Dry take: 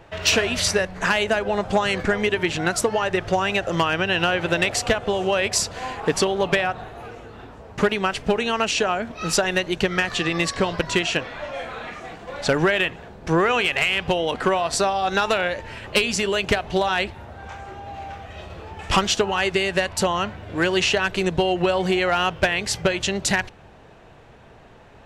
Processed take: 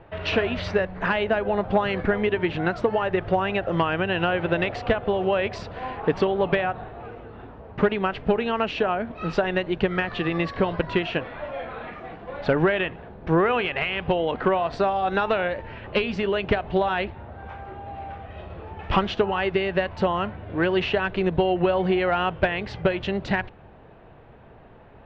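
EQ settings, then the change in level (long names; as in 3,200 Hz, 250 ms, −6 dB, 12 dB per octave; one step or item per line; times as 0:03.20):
low-pass filter 3,800 Hz 24 dB per octave
high-shelf EQ 2,200 Hz −11 dB
0.0 dB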